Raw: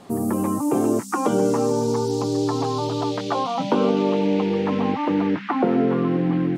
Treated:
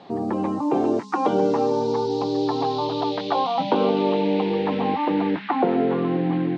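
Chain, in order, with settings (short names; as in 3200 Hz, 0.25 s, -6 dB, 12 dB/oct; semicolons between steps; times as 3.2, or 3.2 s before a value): speaker cabinet 120–4500 Hz, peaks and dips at 120 Hz -5 dB, 230 Hz -5 dB, 800 Hz +5 dB, 1300 Hz -4 dB, 3900 Hz +5 dB; de-hum 210.1 Hz, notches 5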